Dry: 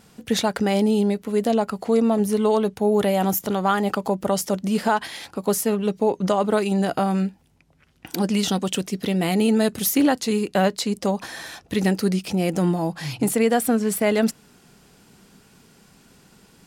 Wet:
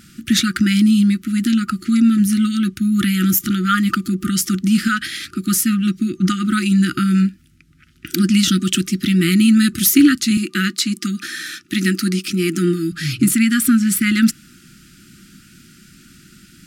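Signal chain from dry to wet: 10.37–12.92 s: high-pass 230 Hz 12 dB/octave; FFT band-reject 370–1200 Hz; trim +8 dB

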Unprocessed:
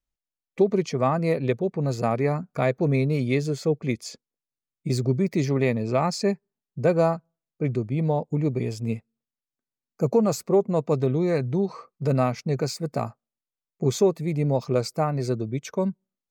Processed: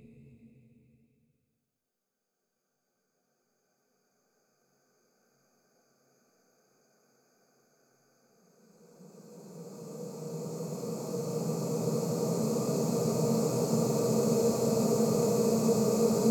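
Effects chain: spectrogram pixelated in time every 400 ms; treble shelf 4.4 kHz +8.5 dB; Paulstretch 19×, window 0.50 s, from 9.35 s

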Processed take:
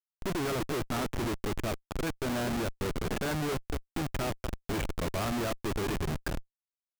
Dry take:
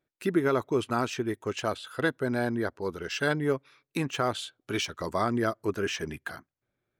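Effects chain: low-pass 2.3 kHz 24 dB/octave; on a send: feedback delay 240 ms, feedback 26%, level -13 dB; on the sum: Schmitt trigger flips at -33.5 dBFS

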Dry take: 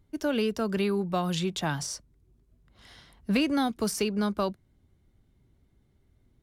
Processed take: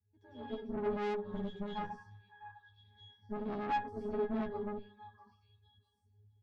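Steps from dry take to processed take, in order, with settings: frequency shift +14 Hz; reverberation RT60 1.2 s, pre-delay 90 ms, DRR -9 dB; in parallel at -10 dB: short-mantissa float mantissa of 2-bit; on the sum: peaking EQ 460 Hz -5 dB 0.72 oct; pitch-class resonator G#, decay 0.54 s; reverb removal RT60 0.91 s; on a send: repeats whose band climbs or falls 653 ms, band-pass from 1.4 kHz, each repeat 1.4 oct, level -5 dB; on the sum: dynamic bell 240 Hz, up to +6 dB, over -41 dBFS, Q 0.96; valve stage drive 32 dB, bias 0.7; doubling 12 ms -3 dB

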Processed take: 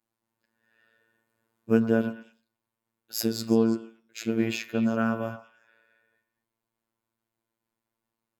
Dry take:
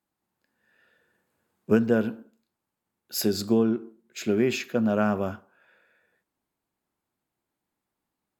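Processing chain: robot voice 113 Hz; on a send: repeats whose band climbs or falls 112 ms, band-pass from 940 Hz, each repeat 1.4 oct, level -8 dB

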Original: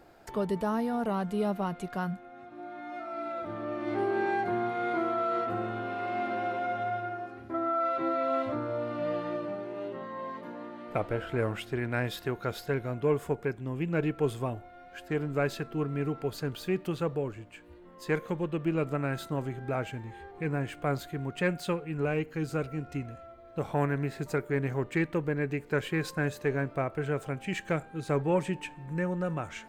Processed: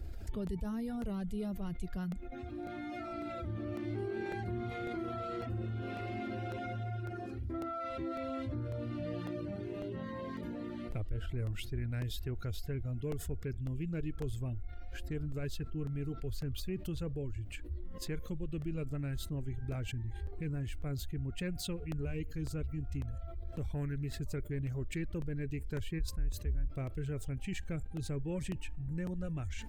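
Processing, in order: 25.99–26.68 s: octave divider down 2 oct, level -4 dB; amplifier tone stack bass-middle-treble 10-0-1; reverb removal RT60 0.76 s; resonant low shelf 100 Hz +10.5 dB, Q 1.5; crackling interface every 0.55 s, samples 64, repeat, from 0.47 s; level flattener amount 70%; trim -1.5 dB

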